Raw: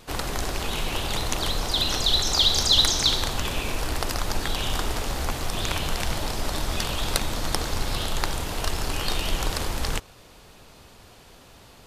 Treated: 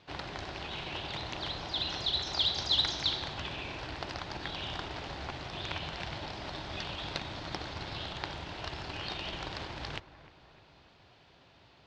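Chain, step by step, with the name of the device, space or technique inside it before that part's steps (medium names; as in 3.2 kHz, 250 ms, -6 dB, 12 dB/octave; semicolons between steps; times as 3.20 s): analogue delay pedal into a guitar amplifier (bucket-brigade echo 304 ms, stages 4096, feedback 53%, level -15.5 dB; valve stage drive 6 dB, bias 0.6; cabinet simulation 87–4500 Hz, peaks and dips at 230 Hz -7 dB, 470 Hz -6 dB, 1.2 kHz -4 dB); trim -5 dB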